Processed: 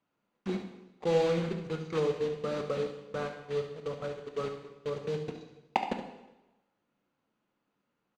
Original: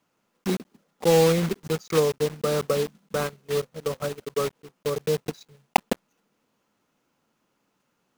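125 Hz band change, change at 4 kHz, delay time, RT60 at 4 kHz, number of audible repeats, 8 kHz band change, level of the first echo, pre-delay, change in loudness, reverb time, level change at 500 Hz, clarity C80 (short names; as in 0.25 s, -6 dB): -8.5 dB, -11.0 dB, 71 ms, 0.95 s, 1, under -15 dB, -11.0 dB, 6 ms, -8.0 dB, 1.0 s, -7.5 dB, 9.5 dB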